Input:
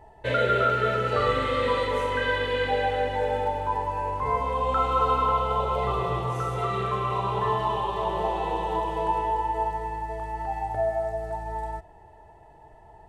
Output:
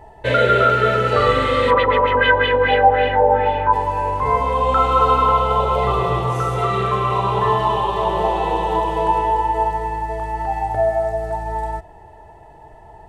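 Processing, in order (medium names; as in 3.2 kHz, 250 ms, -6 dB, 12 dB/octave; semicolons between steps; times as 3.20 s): 1.70–3.72 s: LFO low-pass sine 9 Hz -> 1.4 Hz 790–3100 Hz; trim +8 dB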